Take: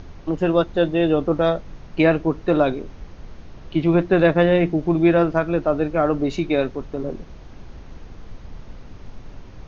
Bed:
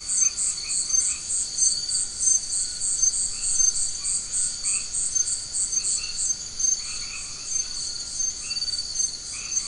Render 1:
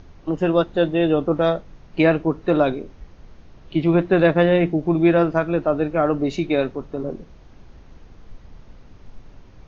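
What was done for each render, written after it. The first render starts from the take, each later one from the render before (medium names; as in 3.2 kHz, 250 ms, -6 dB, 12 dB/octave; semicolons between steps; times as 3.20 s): noise print and reduce 6 dB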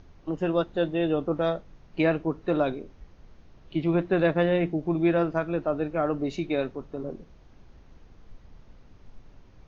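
trim -7 dB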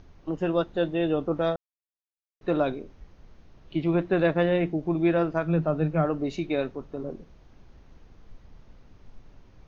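1.56–2.41 s: mute; 5.44–6.05 s: peaking EQ 160 Hz +15 dB 0.26 oct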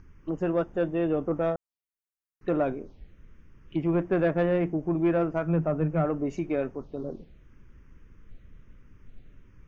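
touch-sensitive phaser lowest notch 580 Hz, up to 4 kHz, full sweep at -27 dBFS; saturation -15 dBFS, distortion -21 dB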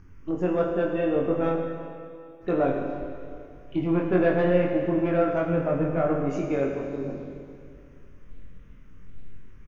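doubling 22 ms -3 dB; Schroeder reverb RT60 2.3 s, combs from 33 ms, DRR 2.5 dB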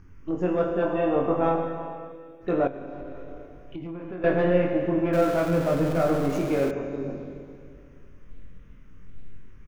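0.82–2.12 s: high-order bell 900 Hz +9 dB 1 oct; 2.67–4.24 s: compression 12:1, threshold -32 dBFS; 5.13–6.71 s: jump at every zero crossing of -31.5 dBFS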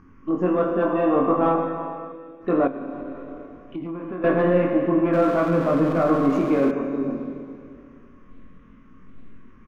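overdrive pedal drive 10 dB, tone 1.6 kHz, clips at -9.5 dBFS; small resonant body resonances 240/1100 Hz, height 13 dB, ringing for 35 ms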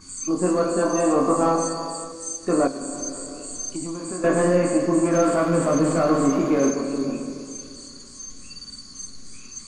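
add bed -12 dB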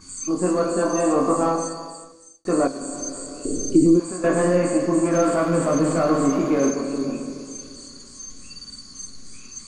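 1.34–2.45 s: fade out; 3.45–4.00 s: resonant low shelf 580 Hz +12 dB, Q 3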